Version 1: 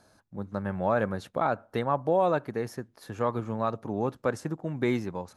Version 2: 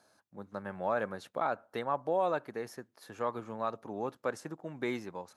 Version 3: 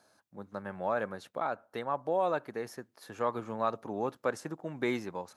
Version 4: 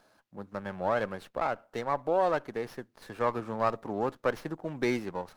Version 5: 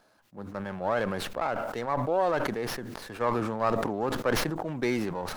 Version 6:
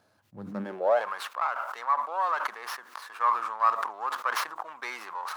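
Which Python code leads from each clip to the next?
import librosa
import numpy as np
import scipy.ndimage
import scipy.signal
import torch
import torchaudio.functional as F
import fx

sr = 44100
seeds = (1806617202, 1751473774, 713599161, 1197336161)

y1 = fx.highpass(x, sr, hz=410.0, slope=6)
y1 = y1 * librosa.db_to_amplitude(-4.0)
y2 = fx.rider(y1, sr, range_db=10, speed_s=2.0)
y3 = fx.running_max(y2, sr, window=5)
y3 = y3 * librosa.db_to_amplitude(3.0)
y4 = fx.sustainer(y3, sr, db_per_s=29.0)
y5 = fx.filter_sweep_highpass(y4, sr, from_hz=92.0, to_hz=1100.0, start_s=0.31, end_s=1.12, q=4.1)
y5 = y5 * librosa.db_to_amplitude(-3.5)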